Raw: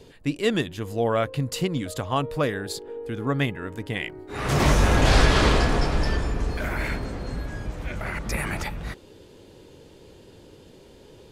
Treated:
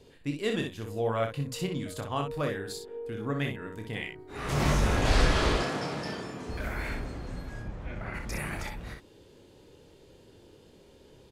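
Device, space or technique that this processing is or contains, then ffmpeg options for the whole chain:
slapback doubling: -filter_complex "[0:a]asettb=1/sr,asplit=3[a][b][c];[a]atrim=end=5.564[d];[b]atrim=start=5.56:end=6.49,asetpts=PTS-STARTPTS,afade=t=in:d=0.004:c=qsin,afade=t=out:st=0.926:d=0.004:c=qsin,highpass=f=130:w=0.5412,highpass=f=130:w=1.3066[e];[c]atrim=start=6.486[f];[d][e]acrossfade=d=0.004:c1=hsin:c2=qsin[g];[g][f]acrossfade=d=0.004:c1=qsin:c2=hsin,asplit=3[h][i][j];[h]afade=t=out:st=7.61:d=0.02[k];[i]aemphasis=mode=reproduction:type=75fm,afade=t=in:st=7.61:d=0.02,afade=t=out:st=8.13:d=0.02[l];[j]afade=t=in:st=8.13:d=0.02[m];[k][l][m]amix=inputs=3:normalize=0,asplit=3[n][o][p];[o]adelay=28,volume=-7dB[q];[p]adelay=62,volume=-6dB[r];[n][q][r]amix=inputs=3:normalize=0,volume=-8dB"

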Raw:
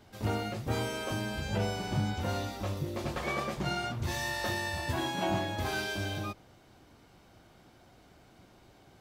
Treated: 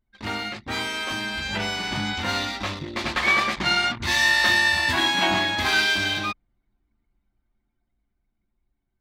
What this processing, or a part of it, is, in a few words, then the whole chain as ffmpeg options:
voice memo with heavy noise removal: -af "equalizer=f=125:t=o:w=1:g=-9,equalizer=f=250:t=o:w=1:g=5,equalizer=f=500:t=o:w=1:g=-6,equalizer=f=1k:t=o:w=1:g=5,equalizer=f=2k:t=o:w=1:g=11,equalizer=f=4k:t=o:w=1:g=10,equalizer=f=8k:t=o:w=1:g=3,anlmdn=2.51,dynaudnorm=f=220:g=17:m=5dB"

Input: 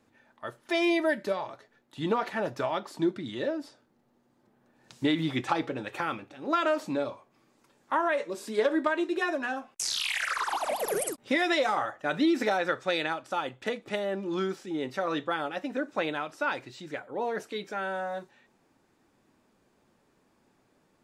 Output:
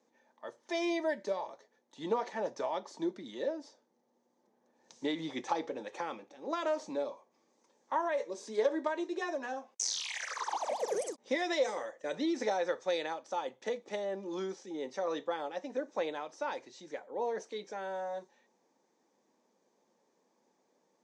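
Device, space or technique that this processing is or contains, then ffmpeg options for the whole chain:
television speaker: -filter_complex "[0:a]asettb=1/sr,asplit=3[a][b][c];[a]atrim=end=11.644[d];[b]atrim=start=11.64:end=12.15,asetpts=PTS-STARTPTS,afade=t=in:d=0.004:c=qsin,afade=t=out:st=0.506:d=0.004:c=qsin,equalizer=f=500:t=o:w=0.33:g=6,equalizer=f=800:t=o:w=0.33:g=-12,equalizer=f=1.25k:t=o:w=0.33:g=-7,equalizer=f=2k:t=o:w=0.33:g=3,equalizer=f=8k:t=o:w=0.33:g=9[e];[c]atrim=start=12.146[f];[d][e]acrossfade=d=0.004:c1=hsin:c2=qsin[g];[g][f]acrossfade=d=0.004:c1=qsin:c2=hsin,highpass=f=200:w=0.5412,highpass=f=200:w=1.3066,equalizer=f=290:t=q:w=4:g=-3,equalizer=f=500:t=q:w=4:g=7,equalizer=f=900:t=q:w=4:g=5,equalizer=f=1.4k:t=q:w=4:g=-8,equalizer=f=2.7k:t=q:w=4:g=-6,equalizer=f=6.1k:t=q:w=4:g=10,lowpass=f=7.8k:w=0.5412,lowpass=f=7.8k:w=1.3066,volume=-7dB"

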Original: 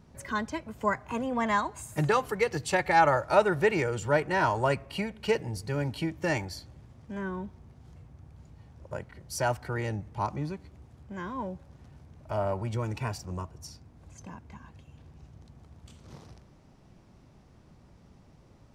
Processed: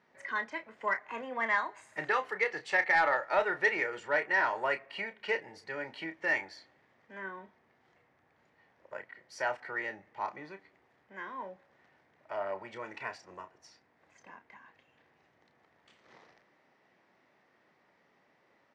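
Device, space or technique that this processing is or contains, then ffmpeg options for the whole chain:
intercom: -filter_complex "[0:a]highpass=450,lowpass=3.9k,equalizer=f=1.9k:t=o:w=0.47:g=11.5,asoftclip=type=tanh:threshold=-11dB,asplit=2[a][b];[b]adelay=31,volume=-9.5dB[c];[a][c]amix=inputs=2:normalize=0,volume=-5dB"

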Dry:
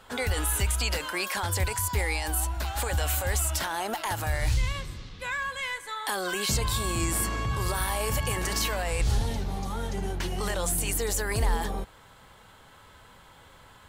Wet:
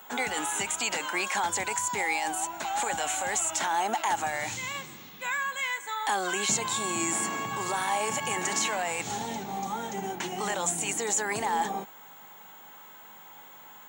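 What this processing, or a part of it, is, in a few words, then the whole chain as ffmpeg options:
old television with a line whistle: -af "highpass=f=180:w=0.5412,highpass=f=180:w=1.3066,equalizer=f=510:t=q:w=4:g=-5,equalizer=f=820:t=q:w=4:g=8,equalizer=f=2.2k:t=q:w=4:g=3,equalizer=f=4.8k:t=q:w=4:g=-8,equalizer=f=7k:t=q:w=4:g=10,lowpass=f=8.3k:w=0.5412,lowpass=f=8.3k:w=1.3066,aeval=exprs='val(0)+0.00355*sin(2*PI*15625*n/s)':c=same"

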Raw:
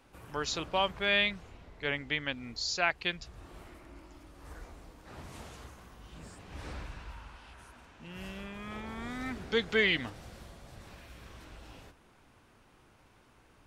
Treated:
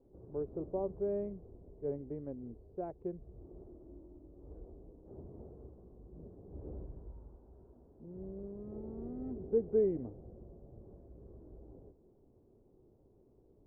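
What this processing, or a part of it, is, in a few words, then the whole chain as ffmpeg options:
under water: -af "lowpass=f=580:w=0.5412,lowpass=f=580:w=1.3066,equalizer=f=390:t=o:w=0.4:g=9,volume=-3dB"

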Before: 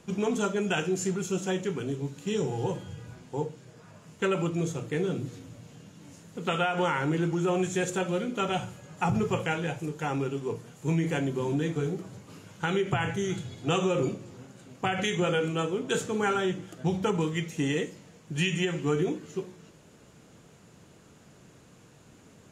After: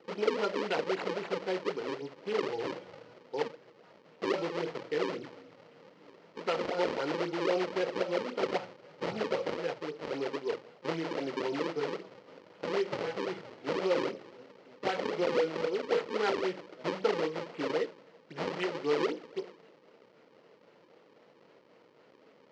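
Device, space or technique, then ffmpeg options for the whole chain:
circuit-bent sampling toy: -af "acrusher=samples=37:mix=1:aa=0.000001:lfo=1:lforange=59.2:lforate=3.8,highpass=450,equalizer=f=490:t=q:w=4:g=5,equalizer=f=750:t=q:w=4:g=-4,equalizer=f=1.1k:t=q:w=4:g=-4,equalizer=f=1.6k:t=q:w=4:g=-6,equalizer=f=2.5k:t=q:w=4:g=-4,equalizer=f=3.6k:t=q:w=4:g=-7,lowpass=f=4.4k:w=0.5412,lowpass=f=4.4k:w=1.3066,volume=1dB"

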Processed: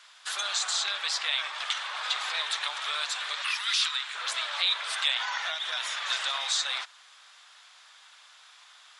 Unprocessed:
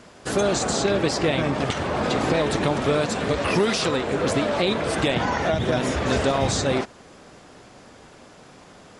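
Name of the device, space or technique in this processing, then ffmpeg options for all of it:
headphones lying on a table: -filter_complex "[0:a]asettb=1/sr,asplit=3[a][b][c];[a]atrim=end=3.424[d];[b]atrim=start=3.42:end=4.15,asetpts=PTS-STARTPTS,afade=t=in:d=0.004:c=qsin,afade=t=out:st=0.726:d=0.004:c=qsin,highpass=1.2k[e];[c]atrim=start=4.146[f];[d][e]acrossfade=d=0.004:c1=hsin:c2=qsin[g];[g][f]acrossfade=d=0.004:c1=qsin:c2=hsin,highpass=f=1.1k:w=0.5412,highpass=f=1.1k:w=1.3066,equalizer=f=3.6k:t=o:w=0.51:g=9,volume=-3.5dB"

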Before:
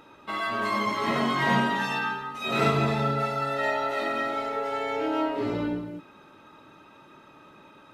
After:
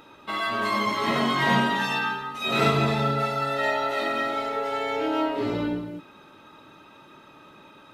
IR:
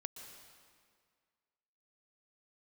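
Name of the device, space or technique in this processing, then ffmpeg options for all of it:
presence and air boost: -af "equalizer=f=3.6k:t=o:w=0.77:g=3.5,highshelf=f=11k:g=5,volume=1.5dB"

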